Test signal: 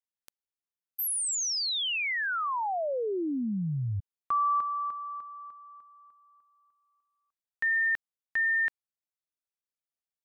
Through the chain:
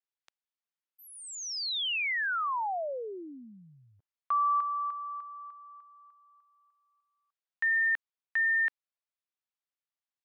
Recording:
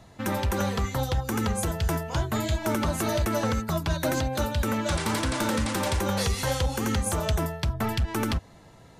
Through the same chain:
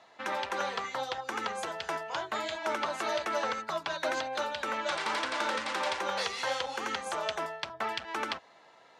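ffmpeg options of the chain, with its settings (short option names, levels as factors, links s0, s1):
-af "highpass=650,lowpass=4200"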